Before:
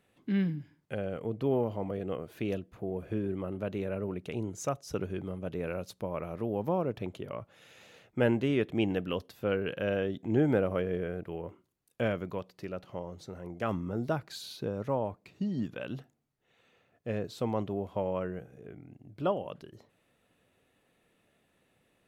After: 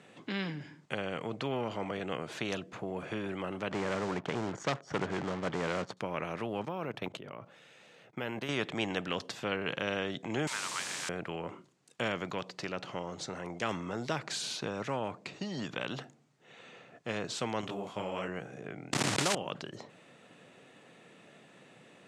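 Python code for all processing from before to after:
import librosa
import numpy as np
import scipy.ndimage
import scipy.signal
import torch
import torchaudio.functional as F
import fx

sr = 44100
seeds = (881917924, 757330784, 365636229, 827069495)

y = fx.chain(x, sr, fx.savgol(points=41),
    fx.leveller(passes=2), at=(3.71, 5.97))
y = fx.chain(y, sr, fx.level_steps(step_db=18),
    fx.resample_bad(factor=3, down='filtered', up='hold'), at=(6.65, 8.49))
y = fx.chain(y, sr, fx.brickwall_highpass(low_hz=880.0),
    fx.quant_dither(seeds[0], bits=8, dither='triangular'), at=(10.47, 11.09))
y = fx.chain(y, sr, fx.high_shelf(hz=6100.0, db=11.5),
    fx.detune_double(cents=48), at=(17.61, 18.28))
y = fx.chain(y, sr, fx.block_float(bits=3),
    fx.env_flatten(amount_pct=100), at=(18.93, 19.35))
y = scipy.signal.sosfilt(scipy.signal.cheby1(3, 1.0, [140.0, 7700.0], 'bandpass', fs=sr, output='sos'), y)
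y = fx.spectral_comp(y, sr, ratio=2.0)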